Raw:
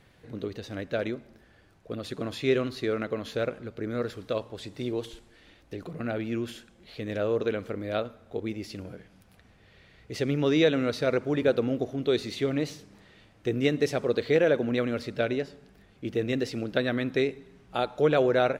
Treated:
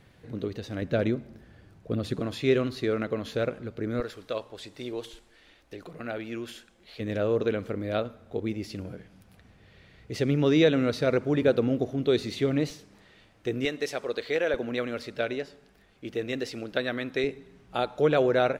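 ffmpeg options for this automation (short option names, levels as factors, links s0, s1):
-af "asetnsamples=n=441:p=0,asendcmd='0.82 equalizer g 10;2.19 equalizer g 3;4 equalizer g -8.5;7 equalizer g 3.5;12.7 equalizer g -3.5;13.65 equalizer g -14.5;14.54 equalizer g -7.5;17.24 equalizer g 0',equalizer=f=120:t=o:w=3:g=3.5"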